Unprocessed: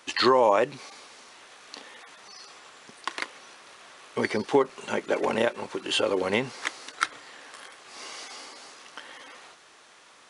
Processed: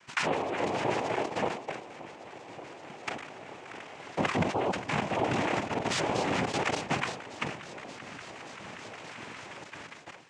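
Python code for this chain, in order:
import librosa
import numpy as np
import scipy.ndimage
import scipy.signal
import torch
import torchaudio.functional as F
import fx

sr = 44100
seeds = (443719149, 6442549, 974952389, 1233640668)

y = fx.reverse_delay_fb(x, sr, ms=289, feedback_pct=83, wet_db=-8)
y = fx.high_shelf(y, sr, hz=2700.0, db=-7.0, at=(3.09, 3.99))
y = fx.level_steps(y, sr, step_db=15)
y = fx.fixed_phaser(y, sr, hz=2100.0, stages=4)
y = fx.noise_vocoder(y, sr, seeds[0], bands=4)
y = fx.air_absorb(y, sr, metres=73.0)
y = fx.sustainer(y, sr, db_per_s=96.0)
y = F.gain(torch.from_numpy(y), 5.5).numpy()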